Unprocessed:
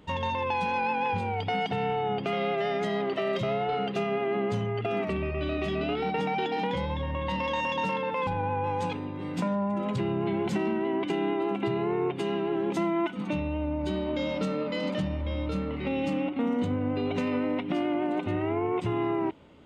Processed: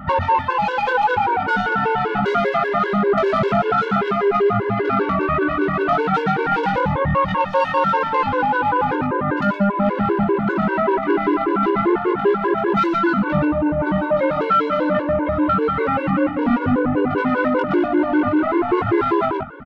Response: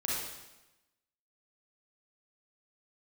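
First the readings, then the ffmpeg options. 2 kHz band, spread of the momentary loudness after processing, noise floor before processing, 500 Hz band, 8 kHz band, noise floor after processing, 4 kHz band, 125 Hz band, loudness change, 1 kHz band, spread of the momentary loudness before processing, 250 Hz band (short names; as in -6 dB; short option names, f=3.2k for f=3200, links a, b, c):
+12.5 dB, 2 LU, -35 dBFS, +9.5 dB, n/a, -25 dBFS, +3.0 dB, +7.0 dB, +10.5 dB, +12.5 dB, 3 LU, +9.5 dB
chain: -filter_complex "[0:a]lowpass=f=1.4k:t=q:w=6.3,bandreject=f=50:t=h:w=6,bandreject=f=100:t=h:w=6,aphaser=in_gain=1:out_gain=1:delay=3.5:decay=0.37:speed=0.3:type=sinusoidal,asoftclip=type=tanh:threshold=-21.5dB,asplit=2[a][b];[b]adelay=20,volume=-3.5dB[c];[a][c]amix=inputs=2:normalize=0,asplit=2[d][e];[e]aecho=0:1:118:0.473[f];[d][f]amix=inputs=2:normalize=0,alimiter=level_in=23.5dB:limit=-1dB:release=50:level=0:latency=1,afftfilt=real='re*gt(sin(2*PI*5.1*pts/sr)*(1-2*mod(floor(b*sr/1024/290),2)),0)':imag='im*gt(sin(2*PI*5.1*pts/sr)*(1-2*mod(floor(b*sr/1024/290),2)),0)':win_size=1024:overlap=0.75,volume=-7.5dB"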